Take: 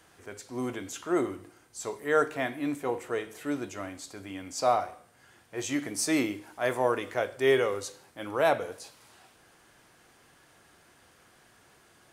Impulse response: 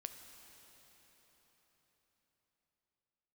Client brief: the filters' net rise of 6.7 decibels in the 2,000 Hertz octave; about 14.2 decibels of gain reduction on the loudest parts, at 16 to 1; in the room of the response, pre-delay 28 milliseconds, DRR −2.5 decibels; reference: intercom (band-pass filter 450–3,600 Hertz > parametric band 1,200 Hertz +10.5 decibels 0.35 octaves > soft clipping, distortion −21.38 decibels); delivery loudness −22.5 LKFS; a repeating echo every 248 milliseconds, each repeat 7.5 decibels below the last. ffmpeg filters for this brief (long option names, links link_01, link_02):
-filter_complex "[0:a]equalizer=frequency=2000:width_type=o:gain=7,acompressor=threshold=-31dB:ratio=16,aecho=1:1:248|496|744|992|1240:0.422|0.177|0.0744|0.0312|0.0131,asplit=2[link_01][link_02];[1:a]atrim=start_sample=2205,adelay=28[link_03];[link_02][link_03]afir=irnorm=-1:irlink=0,volume=6dB[link_04];[link_01][link_04]amix=inputs=2:normalize=0,highpass=450,lowpass=3600,equalizer=frequency=1200:width_type=o:width=0.35:gain=10.5,asoftclip=threshold=-20dB,volume=11dB"